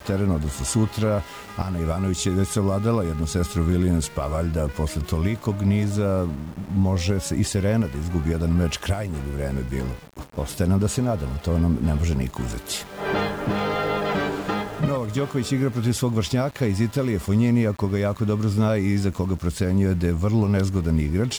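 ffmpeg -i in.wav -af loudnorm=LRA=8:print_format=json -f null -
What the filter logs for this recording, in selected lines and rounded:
"input_i" : "-23.6",
"input_tp" : "-10.7",
"input_lra" : "2.6",
"input_thresh" : "-33.6",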